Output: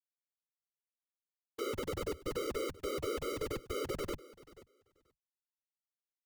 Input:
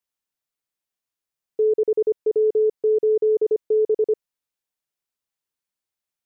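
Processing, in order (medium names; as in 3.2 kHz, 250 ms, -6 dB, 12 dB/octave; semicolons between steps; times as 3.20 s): high-pass 110 Hz 24 dB/octave; high-order bell 500 Hz -9.5 dB 1.1 oct; peak limiter -27.5 dBFS, peak gain reduction 4 dB; Schmitt trigger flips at -47 dBFS; feedback delay 484 ms, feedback 16%, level -19 dB; whisper effect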